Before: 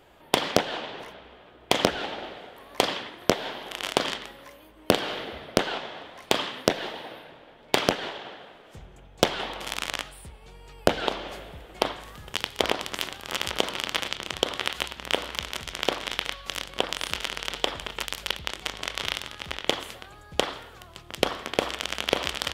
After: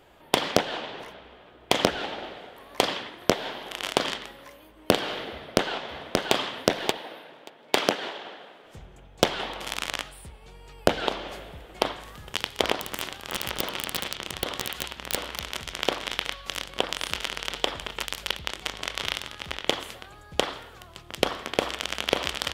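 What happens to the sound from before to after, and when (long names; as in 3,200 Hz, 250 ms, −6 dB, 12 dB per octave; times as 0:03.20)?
0:05.30–0:06.33: delay throw 580 ms, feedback 10%, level −2.5 dB
0:06.97–0:08.64: high-pass filter 200 Hz
0:12.74–0:15.50: wrap-around overflow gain 11 dB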